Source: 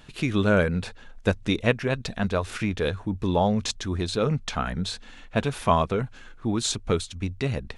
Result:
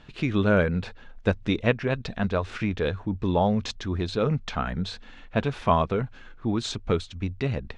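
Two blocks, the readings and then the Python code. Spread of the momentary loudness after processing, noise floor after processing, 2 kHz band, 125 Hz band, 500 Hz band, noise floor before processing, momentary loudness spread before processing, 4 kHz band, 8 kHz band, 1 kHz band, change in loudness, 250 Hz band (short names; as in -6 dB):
9 LU, -47 dBFS, -1.0 dB, 0.0 dB, -0.5 dB, -47 dBFS, 8 LU, -3.5 dB, -10.5 dB, -0.5 dB, -0.5 dB, 0.0 dB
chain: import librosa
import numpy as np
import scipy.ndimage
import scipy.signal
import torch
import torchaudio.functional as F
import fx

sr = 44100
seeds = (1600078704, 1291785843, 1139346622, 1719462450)

y = fx.air_absorb(x, sr, metres=130.0)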